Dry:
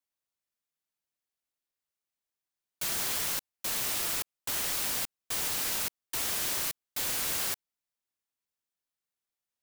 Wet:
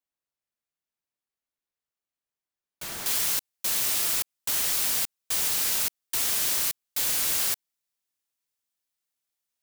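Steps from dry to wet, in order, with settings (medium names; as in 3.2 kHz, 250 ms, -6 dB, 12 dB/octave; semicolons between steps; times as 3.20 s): treble shelf 2.6 kHz -5 dB, from 3.06 s +6.5 dB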